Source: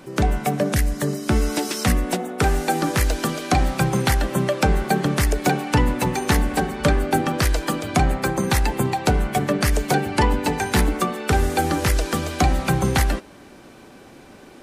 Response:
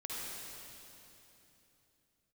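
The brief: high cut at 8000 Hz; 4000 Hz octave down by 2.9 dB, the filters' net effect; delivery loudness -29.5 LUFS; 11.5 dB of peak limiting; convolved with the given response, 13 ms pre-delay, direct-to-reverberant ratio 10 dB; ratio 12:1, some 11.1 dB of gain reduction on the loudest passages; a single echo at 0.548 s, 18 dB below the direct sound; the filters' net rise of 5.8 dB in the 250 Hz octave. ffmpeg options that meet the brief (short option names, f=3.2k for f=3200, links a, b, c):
-filter_complex "[0:a]lowpass=8k,equalizer=f=250:t=o:g=7.5,equalizer=f=4k:t=o:g=-3.5,acompressor=threshold=-22dB:ratio=12,alimiter=limit=-21dB:level=0:latency=1,aecho=1:1:548:0.126,asplit=2[a][b];[1:a]atrim=start_sample=2205,adelay=13[c];[b][c]afir=irnorm=-1:irlink=0,volume=-11.5dB[d];[a][d]amix=inputs=2:normalize=0,volume=0.5dB"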